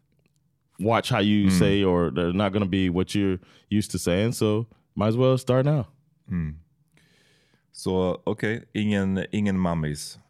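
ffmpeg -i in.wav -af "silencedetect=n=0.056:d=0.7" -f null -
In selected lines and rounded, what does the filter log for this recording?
silence_start: 0.00
silence_end: 0.81 | silence_duration: 0.81
silence_start: 6.50
silence_end: 7.87 | silence_duration: 1.37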